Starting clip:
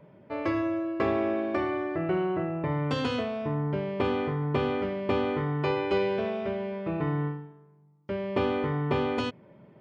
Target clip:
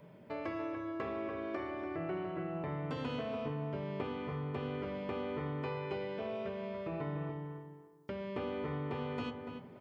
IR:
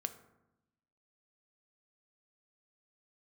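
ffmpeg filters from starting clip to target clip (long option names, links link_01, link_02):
-filter_complex "[0:a]acrossover=split=2700[link_01][link_02];[link_02]acompressor=threshold=-57dB:ratio=4:attack=1:release=60[link_03];[link_01][link_03]amix=inputs=2:normalize=0,highshelf=frequency=3500:gain=12,acompressor=threshold=-37dB:ratio=2.5,asplit=2[link_04][link_05];[link_05]adelay=289,lowpass=frequency=1900:poles=1,volume=-5.5dB,asplit=2[link_06][link_07];[link_07]adelay=289,lowpass=frequency=1900:poles=1,volume=0.24,asplit=2[link_08][link_09];[link_09]adelay=289,lowpass=frequency=1900:poles=1,volume=0.24[link_10];[link_04][link_06][link_08][link_10]amix=inputs=4:normalize=0[link_11];[1:a]atrim=start_sample=2205[link_12];[link_11][link_12]afir=irnorm=-1:irlink=0,volume=-2dB"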